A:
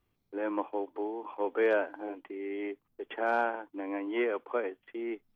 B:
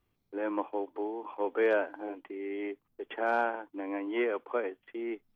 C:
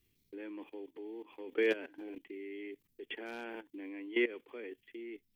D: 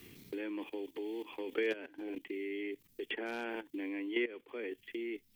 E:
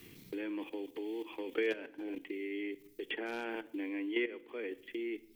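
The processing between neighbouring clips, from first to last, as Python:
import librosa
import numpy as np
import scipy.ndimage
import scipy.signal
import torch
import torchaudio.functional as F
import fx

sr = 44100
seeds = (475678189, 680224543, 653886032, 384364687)

y1 = x
y2 = fx.band_shelf(y1, sr, hz=900.0, db=-14.0, octaves=1.7)
y2 = fx.level_steps(y2, sr, step_db=16)
y2 = fx.high_shelf(y2, sr, hz=2900.0, db=9.5)
y2 = F.gain(torch.from_numpy(y2), 3.5).numpy()
y3 = fx.band_squash(y2, sr, depth_pct=70)
y3 = F.gain(torch.from_numpy(y3), 4.0).numpy()
y4 = fx.room_shoebox(y3, sr, seeds[0], volume_m3=2500.0, walls='furnished', distance_m=0.59)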